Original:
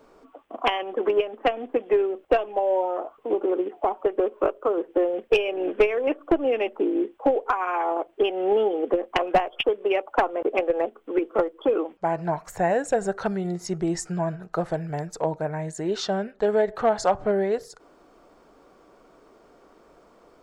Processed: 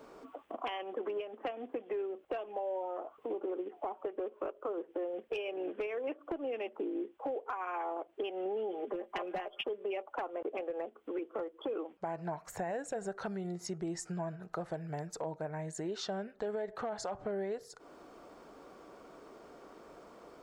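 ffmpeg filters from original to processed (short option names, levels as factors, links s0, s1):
-filter_complex "[0:a]asettb=1/sr,asplit=3[s0][s1][s2];[s0]atrim=end=8.454[s3];[s1]atrim=start=8.45:end=10.04,asetpts=PTS-STARTPTS,afade=t=in:d=0.004:c=qsin,afade=t=out:st=1.586:d=0.004:c=qsin,aecho=1:1:5:0.71,atrim=end_sample=70119[s4];[s2]atrim=start=10.036[s5];[s3][s4]acrossfade=d=0.004:c1=hsin:c2=qsin[s6];[s6][s5]acrossfade=d=0.004:c1=qsin:c2=hsin,highpass=f=68:p=1,alimiter=limit=0.15:level=0:latency=1:release=13,acompressor=threshold=0.00708:ratio=2.5,volume=1.12"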